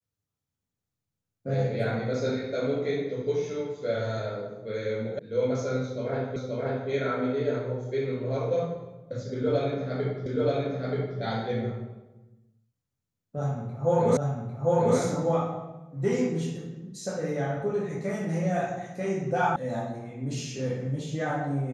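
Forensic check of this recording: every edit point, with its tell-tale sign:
5.19 sound cut off
6.36 repeat of the last 0.53 s
10.26 repeat of the last 0.93 s
14.17 repeat of the last 0.8 s
19.56 sound cut off

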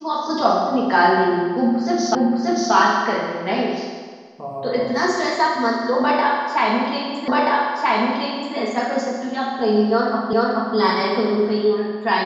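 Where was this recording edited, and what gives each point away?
2.15 repeat of the last 0.58 s
7.28 repeat of the last 1.28 s
10.33 repeat of the last 0.43 s

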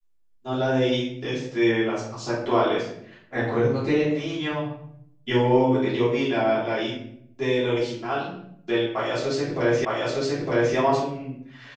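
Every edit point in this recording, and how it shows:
9.85 repeat of the last 0.91 s

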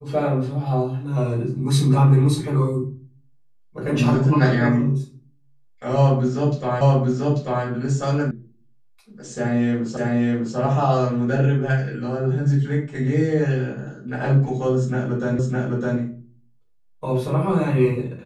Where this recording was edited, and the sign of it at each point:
6.81 repeat of the last 0.84 s
8.31 sound cut off
9.97 repeat of the last 0.6 s
15.39 repeat of the last 0.61 s

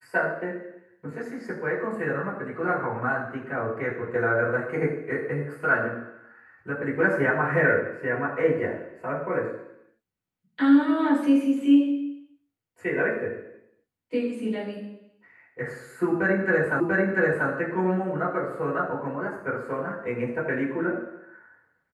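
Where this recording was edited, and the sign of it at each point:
16.8 repeat of the last 0.69 s

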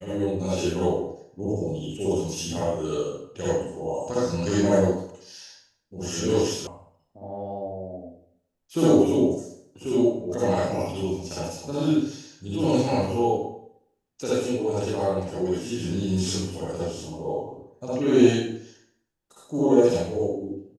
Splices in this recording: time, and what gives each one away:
6.67 sound cut off

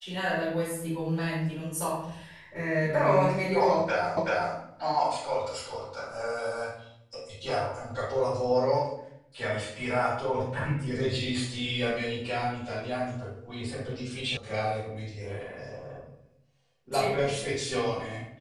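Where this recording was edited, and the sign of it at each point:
4.17 repeat of the last 0.38 s
14.37 sound cut off

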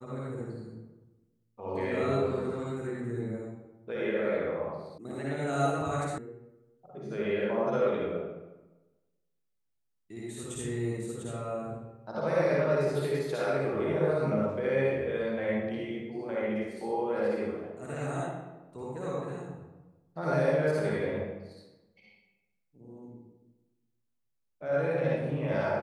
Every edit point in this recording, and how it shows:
4.98 sound cut off
6.18 sound cut off

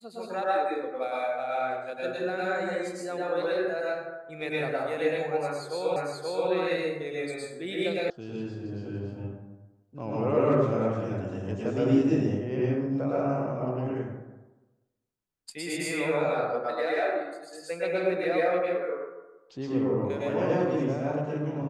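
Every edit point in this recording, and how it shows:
5.96 repeat of the last 0.53 s
8.1 sound cut off

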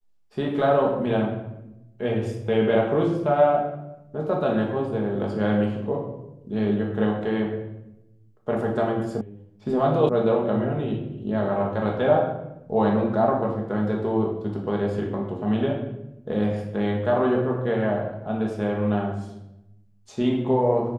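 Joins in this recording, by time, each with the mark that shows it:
9.21 sound cut off
10.09 sound cut off

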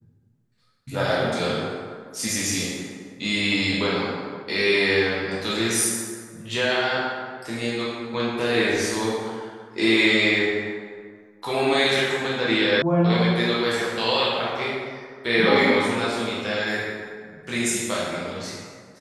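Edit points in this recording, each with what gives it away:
12.82 sound cut off

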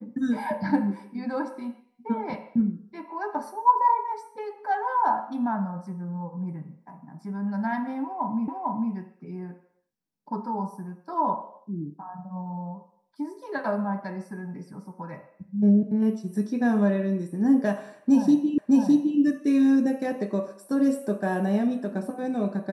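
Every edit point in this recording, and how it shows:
8.48 repeat of the last 0.45 s
18.58 repeat of the last 0.61 s

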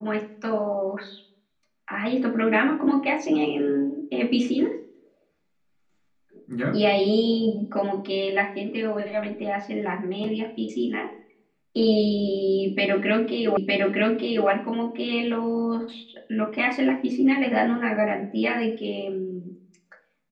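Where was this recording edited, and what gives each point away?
13.57 repeat of the last 0.91 s

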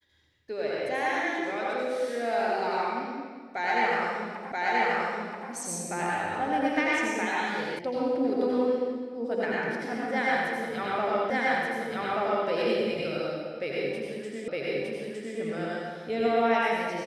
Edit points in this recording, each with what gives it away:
4.52 repeat of the last 0.98 s
7.79 sound cut off
11.3 repeat of the last 1.18 s
14.48 repeat of the last 0.91 s

